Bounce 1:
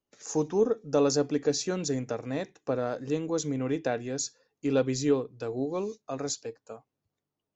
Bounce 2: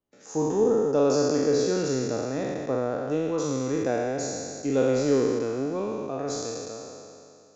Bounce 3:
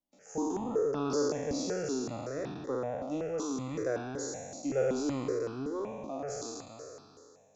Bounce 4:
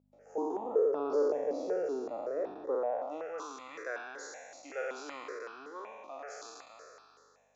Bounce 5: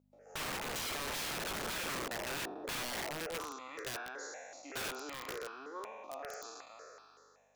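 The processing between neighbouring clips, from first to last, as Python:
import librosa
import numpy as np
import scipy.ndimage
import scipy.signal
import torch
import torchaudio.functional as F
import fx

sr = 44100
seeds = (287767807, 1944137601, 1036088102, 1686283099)

y1 = fx.spec_trails(x, sr, decay_s=2.45)
y1 = fx.high_shelf(y1, sr, hz=2100.0, db=-9.0)
y2 = fx.phaser_held(y1, sr, hz=5.3, low_hz=430.0, high_hz=2000.0)
y2 = y2 * 10.0 ** (-4.0 / 20.0)
y3 = scipy.signal.sosfilt(scipy.signal.butter(2, 370.0, 'highpass', fs=sr, output='sos'), y2)
y3 = fx.add_hum(y3, sr, base_hz=50, snr_db=24)
y3 = fx.filter_sweep_bandpass(y3, sr, from_hz=540.0, to_hz=1800.0, start_s=2.7, end_s=3.58, q=1.3)
y3 = y3 * 10.0 ** (5.0 / 20.0)
y4 = (np.mod(10.0 ** (34.0 / 20.0) * y3 + 1.0, 2.0) - 1.0) / 10.0 ** (34.0 / 20.0)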